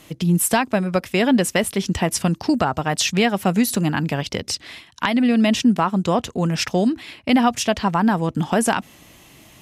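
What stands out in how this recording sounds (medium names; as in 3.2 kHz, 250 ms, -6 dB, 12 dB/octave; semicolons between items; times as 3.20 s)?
noise floor -49 dBFS; spectral tilt -4.5 dB/octave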